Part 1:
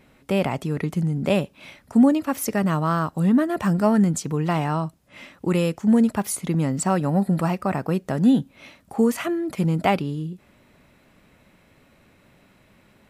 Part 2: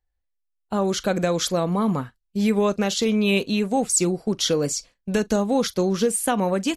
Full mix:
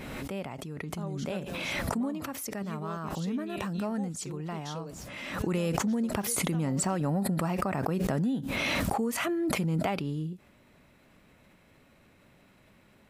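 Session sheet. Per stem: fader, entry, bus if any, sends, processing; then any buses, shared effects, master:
5.32 s -15 dB -> 5.56 s -4.5 dB, 0.00 s, no send, swell ahead of each attack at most 23 dB/s
-13.0 dB, 0.25 s, no send, auto duck -8 dB, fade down 1.70 s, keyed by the first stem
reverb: none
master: compression 12:1, threshold -25 dBFS, peak gain reduction 9.5 dB

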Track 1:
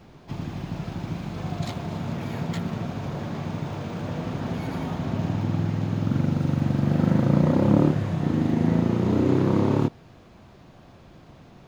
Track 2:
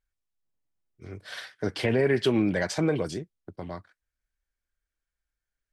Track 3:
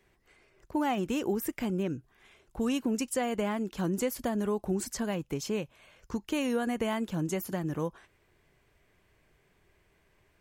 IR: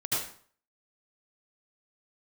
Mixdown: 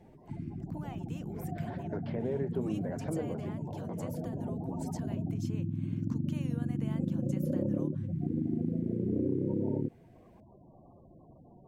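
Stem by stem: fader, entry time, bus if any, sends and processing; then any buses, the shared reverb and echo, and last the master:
-3.5 dB, 0.00 s, bus A, no send, steep low-pass 1.3 kHz 36 dB/octave; spectral gate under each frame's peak -15 dB strong
-8.5 dB, 0.30 s, bus A, no send, none
-4.5 dB, 0.00 s, no bus, no send, compression 2:1, threshold -49 dBFS, peak gain reduction 13 dB
bus A: 0.0 dB, low-pass that closes with the level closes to 770 Hz, closed at -27.5 dBFS; compression, threshold -24 dBFS, peak gain reduction 8 dB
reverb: none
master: bass shelf 200 Hz -6 dB

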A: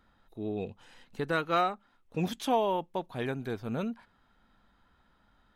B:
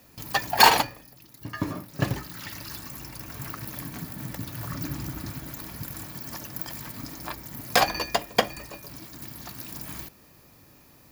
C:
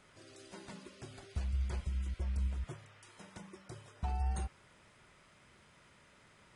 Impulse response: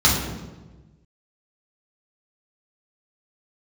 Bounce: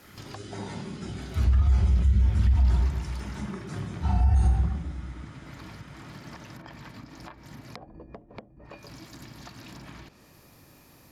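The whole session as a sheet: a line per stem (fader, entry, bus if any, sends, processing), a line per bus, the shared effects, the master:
-14.0 dB, 0.00 s, bus A, send -21.5 dB, static phaser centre 1.6 kHz, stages 6
+1.0 dB, 0.00 s, bus A, no send, low-pass that closes with the level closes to 360 Hz, closed at -25.5 dBFS
+0.5 dB, 0.00 s, no bus, send -11 dB, phase randomisation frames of 50 ms; bass shelf 70 Hz -8 dB
bus A: 0.0 dB, compression 20:1, threshold -40 dBFS, peak gain reduction 23 dB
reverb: on, RT60 1.2 s, pre-delay 3 ms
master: peak limiter -14.5 dBFS, peak gain reduction 9.5 dB

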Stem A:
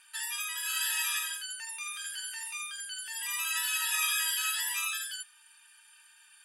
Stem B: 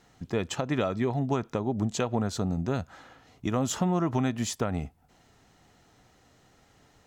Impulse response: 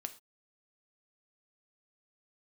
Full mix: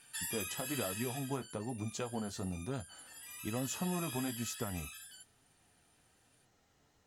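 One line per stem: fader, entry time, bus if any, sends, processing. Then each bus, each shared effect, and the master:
0.0 dB, 0.00 s, no send, auto duck -14 dB, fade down 1.20 s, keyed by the second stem
-7.5 dB, 0.00 s, no send, none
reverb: none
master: flange 1.1 Hz, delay 6.6 ms, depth 7.8 ms, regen -39%; treble shelf 6.7 kHz +6 dB

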